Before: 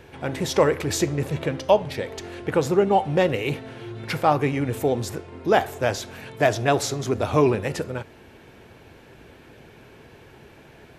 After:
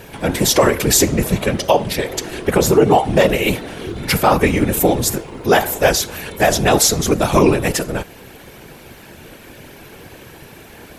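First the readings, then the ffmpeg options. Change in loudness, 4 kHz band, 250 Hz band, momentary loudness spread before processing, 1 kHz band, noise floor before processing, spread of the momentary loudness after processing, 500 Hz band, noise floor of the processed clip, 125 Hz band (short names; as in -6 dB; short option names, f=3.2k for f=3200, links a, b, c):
+7.5 dB, +11.5 dB, +8.0 dB, 12 LU, +6.0 dB, -49 dBFS, 11 LU, +6.0 dB, -41 dBFS, +6.0 dB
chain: -af "afftfilt=real='hypot(re,im)*cos(2*PI*random(0))':imag='hypot(re,im)*sin(2*PI*random(1))':win_size=512:overlap=0.75,aemphasis=mode=production:type=50fm,alimiter=level_in=15.5dB:limit=-1dB:release=50:level=0:latency=1,volume=-1dB"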